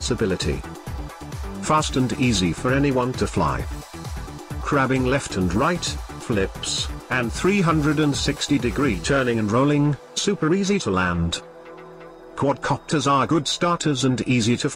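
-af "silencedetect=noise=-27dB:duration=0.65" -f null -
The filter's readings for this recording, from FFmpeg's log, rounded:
silence_start: 11.39
silence_end: 12.38 | silence_duration: 0.99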